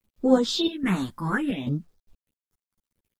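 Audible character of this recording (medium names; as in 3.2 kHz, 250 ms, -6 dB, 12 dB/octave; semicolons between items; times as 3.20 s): chopped level 1.2 Hz, depth 65%, duty 80%; phasing stages 4, 0.66 Hz, lowest notch 440–2400 Hz; a quantiser's noise floor 12-bit, dither none; a shimmering, thickened sound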